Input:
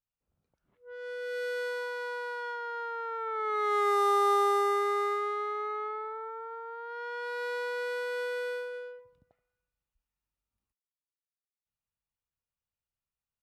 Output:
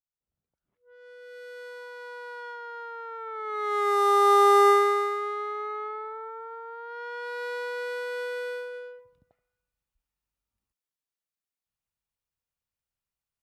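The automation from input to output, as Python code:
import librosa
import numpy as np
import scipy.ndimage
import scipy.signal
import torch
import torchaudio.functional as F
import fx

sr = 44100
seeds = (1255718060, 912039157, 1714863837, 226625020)

y = fx.gain(x, sr, db=fx.line((1.45, -9.5), (2.39, -2.5), (3.44, -2.5), (4.69, 10.0), (5.12, 1.0)))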